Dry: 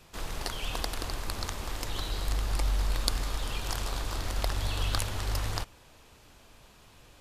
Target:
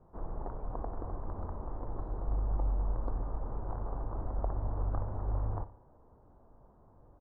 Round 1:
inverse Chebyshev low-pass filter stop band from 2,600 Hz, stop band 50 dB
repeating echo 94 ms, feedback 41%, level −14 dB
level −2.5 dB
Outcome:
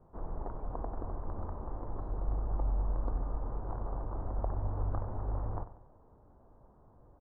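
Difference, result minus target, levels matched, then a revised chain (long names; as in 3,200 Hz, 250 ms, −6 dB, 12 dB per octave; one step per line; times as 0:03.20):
echo 35 ms late
inverse Chebyshev low-pass filter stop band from 2,600 Hz, stop band 50 dB
repeating echo 59 ms, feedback 41%, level −14 dB
level −2.5 dB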